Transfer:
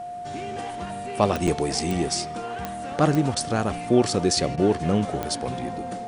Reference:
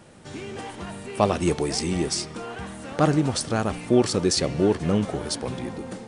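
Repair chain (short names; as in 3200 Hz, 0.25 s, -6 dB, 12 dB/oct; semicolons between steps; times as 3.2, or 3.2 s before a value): de-click; notch 710 Hz, Q 30; interpolate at 1.47, 6.7 ms; interpolate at 3.35/4.56, 13 ms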